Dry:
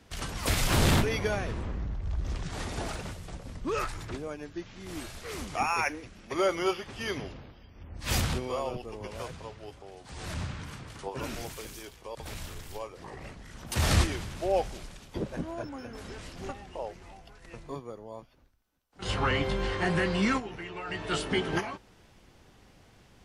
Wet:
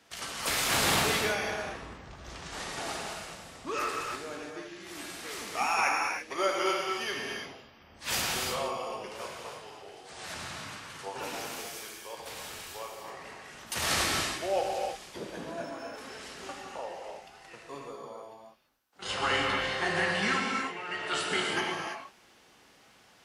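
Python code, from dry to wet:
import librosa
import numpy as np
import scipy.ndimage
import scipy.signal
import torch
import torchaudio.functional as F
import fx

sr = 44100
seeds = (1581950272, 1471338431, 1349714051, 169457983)

y = fx.highpass(x, sr, hz=700.0, slope=6)
y = fx.rev_gated(y, sr, seeds[0], gate_ms=360, shape='flat', drr_db=-1.5)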